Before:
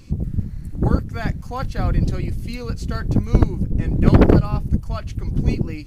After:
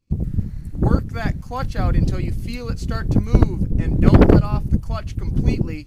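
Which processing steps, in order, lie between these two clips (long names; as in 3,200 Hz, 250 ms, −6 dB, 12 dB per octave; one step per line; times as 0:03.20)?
downward expander −27 dBFS
level +1 dB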